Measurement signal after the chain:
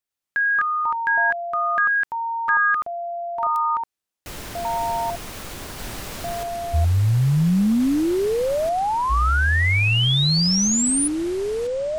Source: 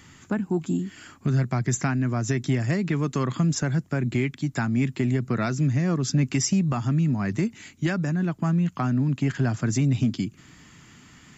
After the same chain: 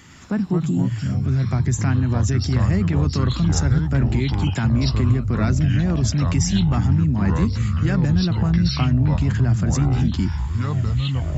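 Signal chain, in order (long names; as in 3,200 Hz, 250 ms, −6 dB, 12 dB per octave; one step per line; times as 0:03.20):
dynamic equaliser 130 Hz, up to +7 dB, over −36 dBFS, Q 0.75
brickwall limiter −18 dBFS
delay with pitch and tempo change per echo 106 ms, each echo −5 semitones, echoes 3
level +3.5 dB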